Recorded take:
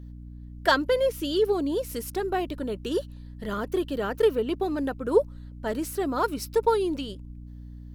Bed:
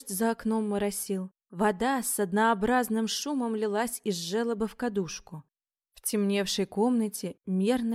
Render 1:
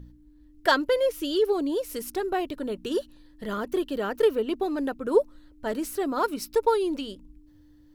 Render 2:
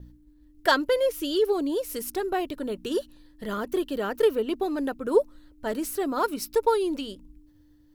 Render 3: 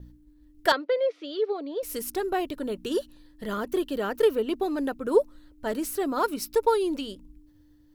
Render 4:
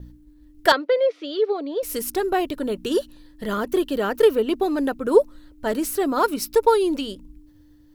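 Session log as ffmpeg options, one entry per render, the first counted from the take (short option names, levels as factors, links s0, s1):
-af "bandreject=f=60:t=h:w=4,bandreject=f=120:t=h:w=4,bandreject=f=180:t=h:w=4,bandreject=f=240:t=h:w=4"
-af "agate=range=0.0224:threshold=0.00282:ratio=3:detection=peak,highshelf=f=8700:g=5"
-filter_complex "[0:a]asettb=1/sr,asplit=3[s0][s1][s2];[s0]atrim=end=0.724[s3];[s1]atrim=start=0.72:end=1.83,asetpts=PTS-STARTPTS,afade=t=in:d=0.004:c=qsin,afade=t=out:st=1.106:d=0.004:c=qsin,highpass=f=320:w=0.5412,highpass=f=320:w=1.3066,equalizer=f=350:t=q:w=4:g=-10,equalizer=f=970:t=q:w=4:g=-8,equalizer=f=1600:t=q:w=4:g=-6,equalizer=f=2900:t=q:w=4:g=-9,lowpass=f=3700:w=0.5412,lowpass=f=3700:w=1.3066[s4];[s2]atrim=start=1.826[s5];[s3][s4]acrossfade=d=0.004:c1=hsin:c2=qsin[s6];[s6][s5]acrossfade=d=0.004:c1=qsin:c2=hsin"
-af "volume=1.88"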